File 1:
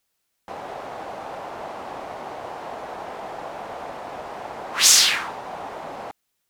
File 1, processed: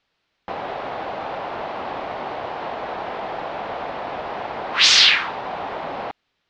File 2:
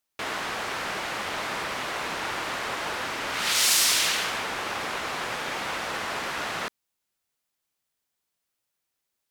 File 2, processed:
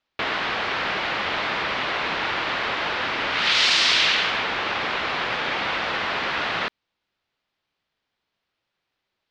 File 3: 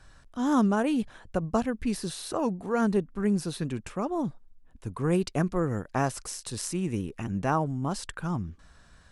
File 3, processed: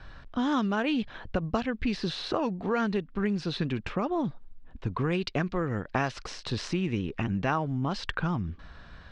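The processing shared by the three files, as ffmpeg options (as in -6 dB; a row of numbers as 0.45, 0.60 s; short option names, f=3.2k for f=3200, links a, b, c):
-filter_complex "[0:a]lowpass=f=4.2k:w=0.5412,lowpass=f=4.2k:w=1.3066,acrossover=split=1800[a][b];[a]acompressor=threshold=-34dB:ratio=6[c];[c][b]amix=inputs=2:normalize=0,volume=8dB"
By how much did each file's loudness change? -5.0, +4.5, -1.0 LU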